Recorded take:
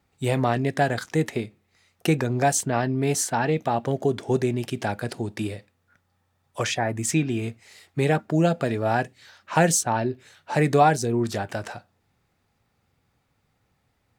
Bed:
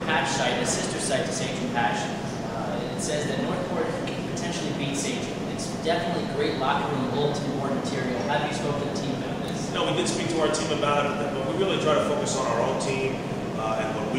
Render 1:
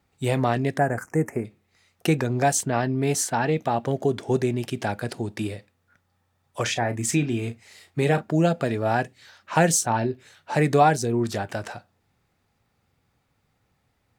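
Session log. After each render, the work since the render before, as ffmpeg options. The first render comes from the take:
-filter_complex "[0:a]asplit=3[a][b][c];[a]afade=t=out:st=0.77:d=0.02[d];[b]asuperstop=centerf=3700:order=4:qfactor=0.69,afade=t=in:st=0.77:d=0.02,afade=t=out:st=1.44:d=0.02[e];[c]afade=t=in:st=1.44:d=0.02[f];[d][e][f]amix=inputs=3:normalize=0,asettb=1/sr,asplit=3[g][h][i];[g]atrim=end=6.624[j];[h]atrim=start=6.62:end=8.32,asetpts=PTS-STARTPTS,afade=t=in:d=0.004:c=qsin,afade=t=out:st=1.696:d=0.004:c=qsin,asplit=2[k][l];[l]adelay=34,volume=-11dB[m];[k][m]amix=inputs=2:normalize=0,atrim=end_sample=74970[n];[i]atrim=start=8.316[o];[j][n]acrossfade=d=0.004:c1=hsin:c2=qsin[p];[p][o]acrossfade=d=0.004:c1=qsin:c2=hsin,asettb=1/sr,asplit=3[q][r][s];[q]atrim=end=9.714[t];[r]atrim=start=9.71:end=10.11,asetpts=PTS-STARTPTS,afade=t=in:d=0.004:c=qsin,afade=t=out:st=0.396:d=0.004:c=qsin,asplit=2[u][v];[v]adelay=26,volume=-11dB[w];[u][w]amix=inputs=2:normalize=0,atrim=end_sample=17640[x];[s]atrim=start=10.106[y];[t][x]acrossfade=d=0.004:c1=hsin:c2=qsin[z];[z][y]acrossfade=d=0.004:c1=qsin:c2=hsin"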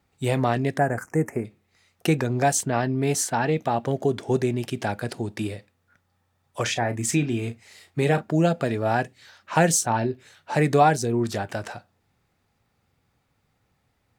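-af anull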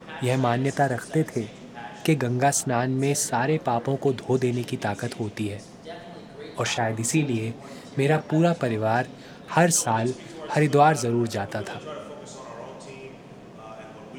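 -filter_complex "[1:a]volume=-14.5dB[a];[0:a][a]amix=inputs=2:normalize=0"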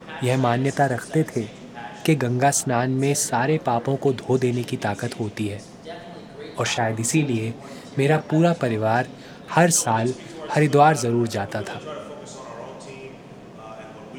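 -af "volume=2.5dB"

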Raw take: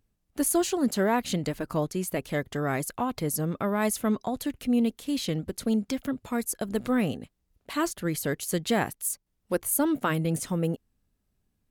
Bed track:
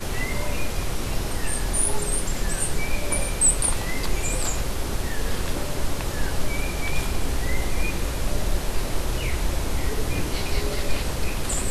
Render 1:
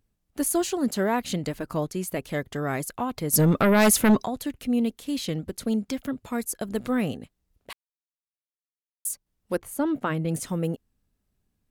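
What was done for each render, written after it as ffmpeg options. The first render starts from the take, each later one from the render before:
-filter_complex "[0:a]asplit=3[a][b][c];[a]afade=t=out:st=3.32:d=0.02[d];[b]aeval=exprs='0.224*sin(PI/2*2.51*val(0)/0.224)':c=same,afade=t=in:st=3.32:d=0.02,afade=t=out:st=4.25:d=0.02[e];[c]afade=t=in:st=4.25:d=0.02[f];[d][e][f]amix=inputs=3:normalize=0,asplit=3[g][h][i];[g]afade=t=out:st=9.56:d=0.02[j];[h]lowpass=f=2.3k:p=1,afade=t=in:st=9.56:d=0.02,afade=t=out:st=10.27:d=0.02[k];[i]afade=t=in:st=10.27:d=0.02[l];[j][k][l]amix=inputs=3:normalize=0,asplit=3[m][n][o];[m]atrim=end=7.73,asetpts=PTS-STARTPTS,afade=t=out:st=7.726:d=0.004:c=hsin[p];[n]atrim=start=7.73:end=9.05,asetpts=PTS-STARTPTS,volume=0[q];[o]atrim=start=9.05,asetpts=PTS-STARTPTS,afade=t=in:d=0.004:c=hsin[r];[p][q][r]concat=n=3:v=0:a=1"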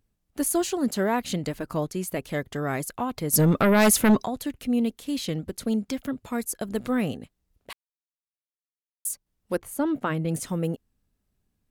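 -af anull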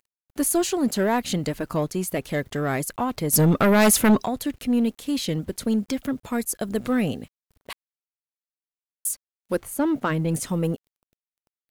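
-filter_complex "[0:a]asplit=2[a][b];[b]asoftclip=type=hard:threshold=-25dB,volume=-5dB[c];[a][c]amix=inputs=2:normalize=0,acrusher=bits=9:mix=0:aa=0.000001"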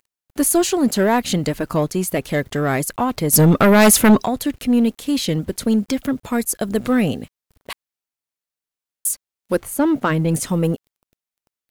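-af "volume=5.5dB"

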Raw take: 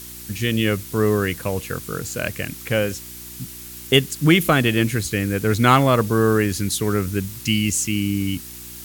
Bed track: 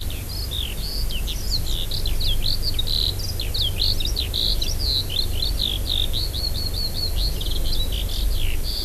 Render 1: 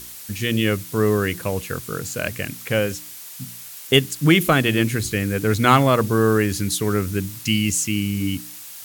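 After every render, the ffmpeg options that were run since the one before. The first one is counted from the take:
-af "bandreject=f=60:t=h:w=4,bandreject=f=120:t=h:w=4,bandreject=f=180:t=h:w=4,bandreject=f=240:t=h:w=4,bandreject=f=300:t=h:w=4,bandreject=f=360:t=h:w=4"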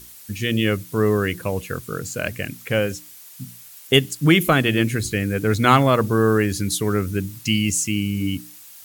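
-af "afftdn=nr=7:nf=-38"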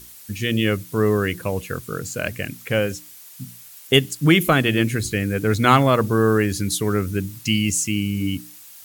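-af anull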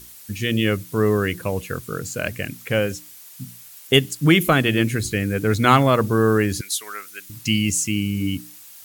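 -filter_complex "[0:a]asettb=1/sr,asplit=3[a][b][c];[a]atrim=end=6.614[d];[b]atrim=start=6.61:end=7.3,asetpts=PTS-STARTPTS,afade=t=in:d=0.004:c=qsin,afade=t=out:st=0.686:d=0.004:c=qsin,highpass=1.3k[e];[c]atrim=start=7.296[f];[d][e]acrossfade=d=0.004:c1=hsin:c2=qsin[g];[g][f]acrossfade=d=0.004:c1=qsin:c2=hsin"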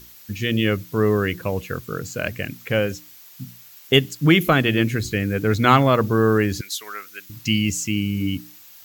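-af "equalizer=f=9.5k:t=o:w=0.48:g=-13.5"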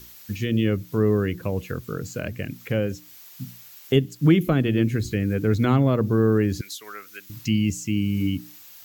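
-filter_complex "[0:a]acrossover=split=480[a][b];[b]acompressor=threshold=-39dB:ratio=2[c];[a][c]amix=inputs=2:normalize=0"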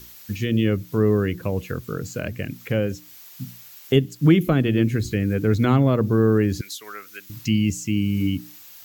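-af "volume=1.5dB"

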